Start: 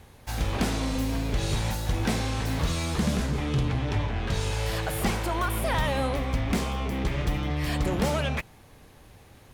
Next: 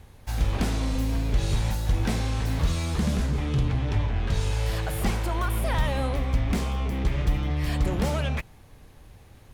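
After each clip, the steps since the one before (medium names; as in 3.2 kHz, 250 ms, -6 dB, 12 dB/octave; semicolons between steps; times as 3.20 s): bass shelf 100 Hz +9.5 dB; trim -2.5 dB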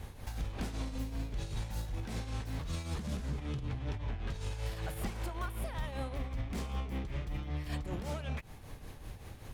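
compression, threshold -34 dBFS, peak gain reduction 15.5 dB; peak limiter -32.5 dBFS, peak gain reduction 7 dB; tremolo triangle 5.2 Hz, depth 65%; trim +5.5 dB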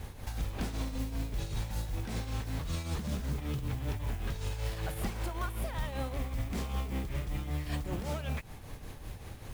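reverse; upward compressor, threshold -44 dBFS; reverse; modulation noise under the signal 22 dB; trim +2.5 dB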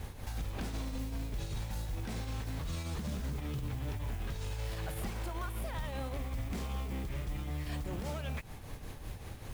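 peak limiter -29.5 dBFS, peak gain reduction 5.5 dB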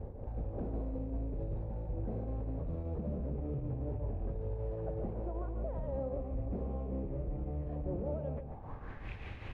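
rattle on loud lows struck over -36 dBFS, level -39 dBFS; low-pass sweep 540 Hz -> 2.5 kHz, 8.39–9.13 s; on a send: delay 143 ms -8.5 dB; on the sum: trim -1 dB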